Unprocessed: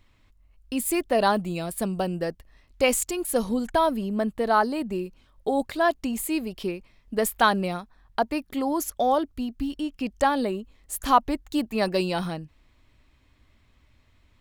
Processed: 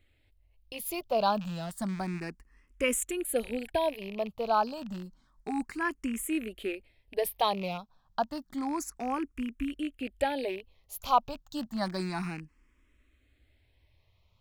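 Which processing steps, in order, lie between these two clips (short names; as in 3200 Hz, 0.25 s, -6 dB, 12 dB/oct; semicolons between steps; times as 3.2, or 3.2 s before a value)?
rattling part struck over -36 dBFS, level -25 dBFS; endless phaser +0.3 Hz; gain -4 dB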